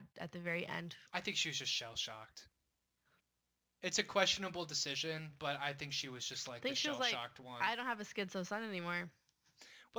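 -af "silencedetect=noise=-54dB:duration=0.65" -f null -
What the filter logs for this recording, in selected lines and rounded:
silence_start: 2.43
silence_end: 3.82 | silence_duration: 1.39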